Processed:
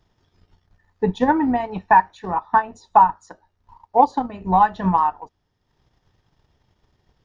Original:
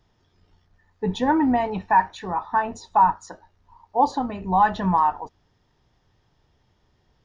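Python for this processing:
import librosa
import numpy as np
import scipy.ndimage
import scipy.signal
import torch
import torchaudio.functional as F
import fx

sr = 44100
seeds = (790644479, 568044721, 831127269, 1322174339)

y = fx.transient(x, sr, attack_db=7, sustain_db=-7)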